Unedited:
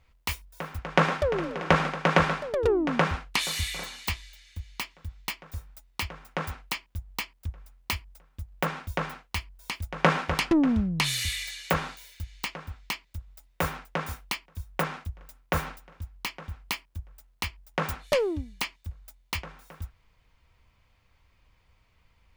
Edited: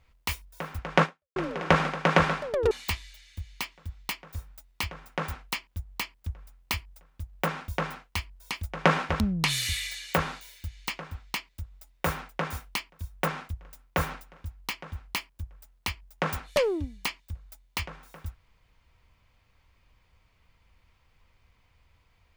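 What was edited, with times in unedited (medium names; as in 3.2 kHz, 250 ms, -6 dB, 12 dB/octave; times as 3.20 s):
1.03–1.36 s: fade out exponential
2.71–3.90 s: delete
10.39–10.76 s: delete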